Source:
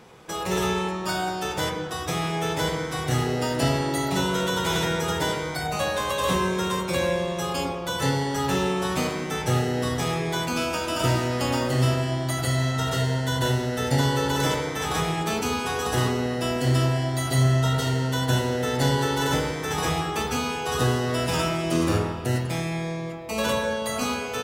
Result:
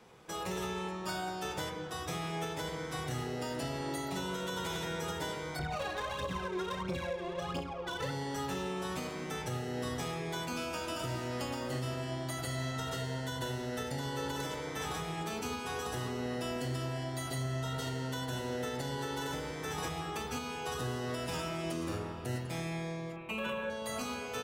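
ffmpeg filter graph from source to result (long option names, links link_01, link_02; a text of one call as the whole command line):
ffmpeg -i in.wav -filter_complex "[0:a]asettb=1/sr,asplit=3[link_01][link_02][link_03];[link_01]atrim=end=5.594[link_04];[link_02]atrim=start=5.59:end=8.11,asetpts=PTS-STARTPTS,afade=type=in:duration=0.004:curve=qsin,afade=type=out:start_time=2.516:duration=0.004:curve=qsin,aphaser=in_gain=1:out_gain=1:delay=3:decay=0.66:speed=1.5:type=triangular,adynamicsmooth=sensitivity=3.5:basefreq=2100[link_05];[link_03]atrim=start=8.106[link_06];[link_04][link_05]acrossfade=duration=0.004:curve1=hsin:curve2=qsin[link_07];[link_07][link_06]acrossfade=duration=0.004:curve1=qsin:curve2=hsin,asettb=1/sr,asplit=3[link_08][link_09][link_10];[link_08]atrim=end=23.164[link_11];[link_09]atrim=start=23.16:end=23.7,asetpts=PTS-STARTPTS,afade=type=in:duration=0.004:curve=qsin,afade=type=out:start_time=0.536:duration=0.004:curve=qsin,highshelf=frequency=3800:width_type=q:width=3:gain=-9,aecho=1:1:5.3:0.65,atrim=end_sample=23814[link_12];[link_10]atrim=start=23.696[link_13];[link_11][link_12]acrossfade=duration=0.004:curve1=hsin:curve2=qsin[link_14];[link_14][link_13]acrossfade=duration=0.004:curve1=qsin:curve2=hsin,adynamicequalizer=threshold=0.0141:dfrequency=120:dqfactor=2.4:tfrequency=120:tqfactor=2.4:attack=5:release=100:ratio=0.375:range=2:mode=cutabove:tftype=bell,alimiter=limit=-18.5dB:level=0:latency=1:release=333,volume=-8.5dB" out.wav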